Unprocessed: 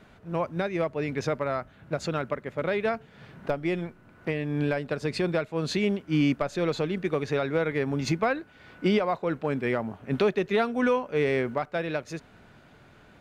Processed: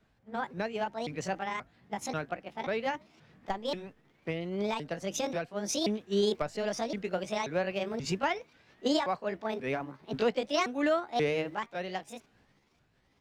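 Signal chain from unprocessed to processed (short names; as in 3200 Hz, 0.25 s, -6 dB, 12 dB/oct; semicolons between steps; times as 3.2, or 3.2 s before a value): repeated pitch sweeps +8.5 st, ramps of 0.533 s; bell 5800 Hz +4 dB 0.86 oct; three-band expander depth 40%; gain -4.5 dB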